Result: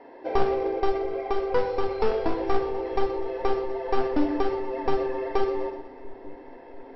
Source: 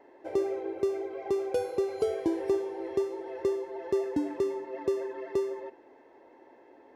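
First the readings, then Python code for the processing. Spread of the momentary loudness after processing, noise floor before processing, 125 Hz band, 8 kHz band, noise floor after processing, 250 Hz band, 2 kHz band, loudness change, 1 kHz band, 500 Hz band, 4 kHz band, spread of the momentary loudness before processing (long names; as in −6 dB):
18 LU, −57 dBFS, +10.0 dB, can't be measured, −46 dBFS, +3.5 dB, +10.0 dB, +4.5 dB, +13.0 dB, +3.5 dB, +8.5 dB, 5 LU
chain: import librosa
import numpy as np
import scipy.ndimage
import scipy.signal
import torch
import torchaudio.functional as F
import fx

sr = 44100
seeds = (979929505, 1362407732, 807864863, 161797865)

p1 = np.minimum(x, 2.0 * 10.0 ** (-26.5 / 20.0) - x)
p2 = fx.room_shoebox(p1, sr, seeds[0], volume_m3=870.0, walls='furnished', distance_m=1.8)
p3 = fx.quant_float(p2, sr, bits=2)
p4 = p2 + (p3 * librosa.db_to_amplitude(-10.0))
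p5 = scipy.signal.sosfilt(scipy.signal.cheby1(8, 1.0, 5500.0, 'lowpass', fs=sr, output='sos'), p4)
p6 = p5 + fx.echo_split(p5, sr, split_hz=340.0, low_ms=693, high_ms=124, feedback_pct=52, wet_db=-14.0, dry=0)
p7 = fx.rider(p6, sr, range_db=10, speed_s=2.0)
y = p7 * librosa.db_to_amplitude(3.0)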